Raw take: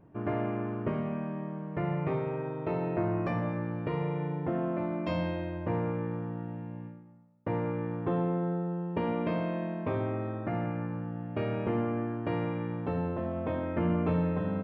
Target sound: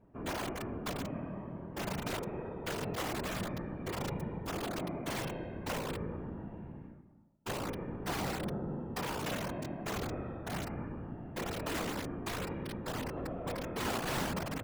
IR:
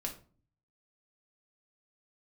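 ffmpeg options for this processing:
-af "aeval=exprs='(mod(15.8*val(0)+1,2)-1)/15.8':channel_layout=same,afftfilt=real='hypot(re,im)*cos(2*PI*random(0))':imag='hypot(re,im)*sin(2*PI*random(1))':win_size=512:overlap=0.75"

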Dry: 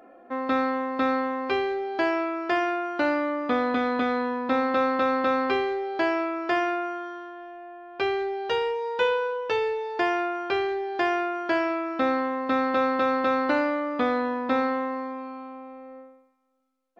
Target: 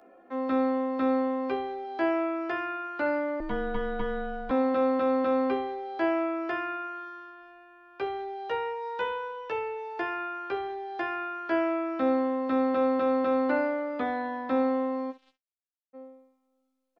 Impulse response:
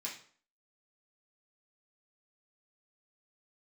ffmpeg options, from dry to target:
-filter_complex "[0:a]highshelf=frequency=2600:gain=3.5,acrossover=split=220|670|2500[link_01][link_02][link_03][link_04];[link_02]asplit=2[link_05][link_06];[link_06]adelay=27,volume=-3dB[link_07];[link_05][link_07]amix=inputs=2:normalize=0[link_08];[link_04]acompressor=threshold=-53dB:ratio=6[link_09];[link_01][link_08][link_03][link_09]amix=inputs=4:normalize=0,asplit=3[link_10][link_11][link_12];[link_10]afade=type=out:start_time=15.1:duration=0.02[link_13];[link_11]acrusher=bits=3:mix=0:aa=0.5,afade=type=in:start_time=15.1:duration=0.02,afade=type=out:start_time=15.93:duration=0.02[link_14];[link_12]afade=type=in:start_time=15.93:duration=0.02[link_15];[link_13][link_14][link_15]amix=inputs=3:normalize=0,aecho=1:1:15|65:0.596|0.168,asettb=1/sr,asplit=3[link_16][link_17][link_18];[link_16]atrim=end=3.404[link_19];[link_17]atrim=start=3.4:end=4.51,asetpts=PTS-STARTPTS,afade=type=in:duration=0.004:curve=qsin,afade=type=out:start_time=1.106:duration=0.004:curve=qsin,afreqshift=-270[link_20];[link_18]atrim=start=4.506[link_21];[link_19][link_20]acrossfade=duration=0.004:curve1=hsin:curve2=qsin[link_22];[link_22][link_21]acrossfade=duration=0.004:curve1=qsin:curve2=hsin,volume=-6.5dB"

